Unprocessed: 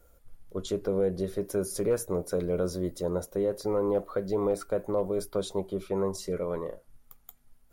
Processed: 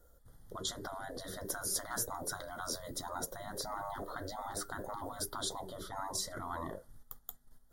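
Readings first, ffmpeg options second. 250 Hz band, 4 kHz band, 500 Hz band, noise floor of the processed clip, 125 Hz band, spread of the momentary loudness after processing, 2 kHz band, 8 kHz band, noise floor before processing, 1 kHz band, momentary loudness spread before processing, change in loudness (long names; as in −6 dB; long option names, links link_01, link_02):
−15.5 dB, +3.5 dB, −17.5 dB, −64 dBFS, −13.0 dB, 10 LU, +3.0 dB, +3.5 dB, −61 dBFS, +1.0 dB, 5 LU, −9.5 dB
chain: -af "agate=range=-8dB:threshold=-53dB:ratio=16:detection=peak,asuperstop=centerf=2500:order=8:qfactor=2.2,afftfilt=real='re*lt(hypot(re,im),0.0501)':imag='im*lt(hypot(re,im),0.0501)':win_size=1024:overlap=0.75,volume=4.5dB"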